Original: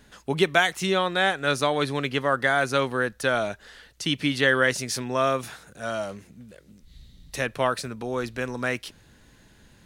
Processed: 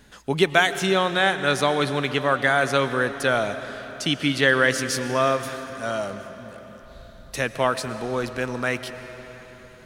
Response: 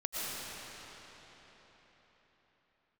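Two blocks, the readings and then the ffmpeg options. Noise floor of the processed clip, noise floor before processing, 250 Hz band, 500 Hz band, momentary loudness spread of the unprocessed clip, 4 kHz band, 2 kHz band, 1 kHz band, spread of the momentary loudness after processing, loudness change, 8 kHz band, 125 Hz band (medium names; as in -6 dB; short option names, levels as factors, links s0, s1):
-46 dBFS, -56 dBFS, +2.5 dB, +2.5 dB, 11 LU, +2.5 dB, +2.5 dB, +2.5 dB, 17 LU, +2.5 dB, +2.5 dB, +2.5 dB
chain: -filter_complex "[0:a]asplit=2[s0][s1];[1:a]atrim=start_sample=2205[s2];[s1][s2]afir=irnorm=-1:irlink=0,volume=0.188[s3];[s0][s3]amix=inputs=2:normalize=0,volume=1.12"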